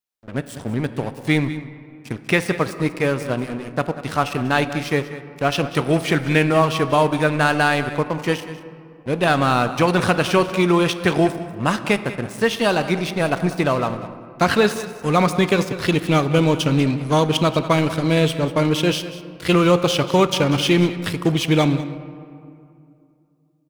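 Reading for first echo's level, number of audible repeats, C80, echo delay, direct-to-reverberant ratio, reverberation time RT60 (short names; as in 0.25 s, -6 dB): -15.0 dB, 1, 11.5 dB, 0.192 s, 10.0 dB, 2.5 s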